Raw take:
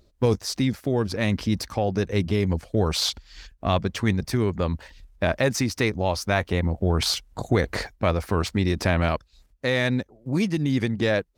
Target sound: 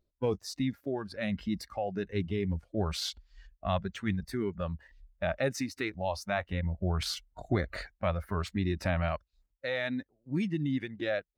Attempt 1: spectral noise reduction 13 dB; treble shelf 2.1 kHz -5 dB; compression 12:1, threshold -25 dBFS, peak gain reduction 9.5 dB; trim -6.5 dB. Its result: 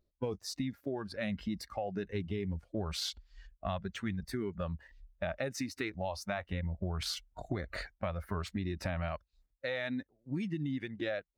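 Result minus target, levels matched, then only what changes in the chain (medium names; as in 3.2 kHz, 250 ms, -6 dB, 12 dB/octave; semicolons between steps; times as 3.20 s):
compression: peak gain reduction +9.5 dB
remove: compression 12:1, threshold -25 dBFS, peak gain reduction 9.5 dB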